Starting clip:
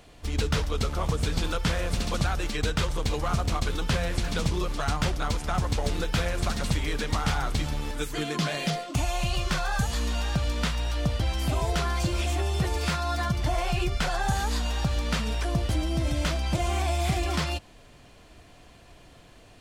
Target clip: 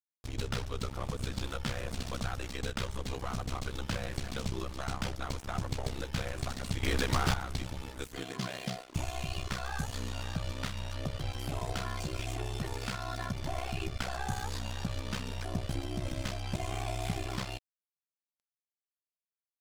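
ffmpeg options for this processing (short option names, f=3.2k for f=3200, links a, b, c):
-filter_complex "[0:a]aeval=exprs='val(0)*sin(2*PI*32*n/s)':c=same,aeval=exprs='sgn(val(0))*max(abs(val(0))-0.00944,0)':c=same,asettb=1/sr,asplit=3[a][b][c];[a]atrim=end=6.834[d];[b]atrim=start=6.83:end=7.34,asetpts=PTS-STARTPTS,afade=t=in:d=0.004:c=qsin,afade=t=out:st=0.506:d=0.004:c=qsin,aeval=exprs='0.211*(cos(1*acos(clip(val(0)/0.211,-1,1)))-cos(1*PI/2))+0.0944*(cos(5*acos(clip(val(0)/0.211,-1,1)))-cos(5*PI/2))':c=same[e];[c]atrim=start=7.336[f];[d][e]acrossfade=d=0.004:c1=hsin:c2=qsin[g];[g][f]acrossfade=d=0.004:c1=qsin:c2=hsin,volume=-4.5dB"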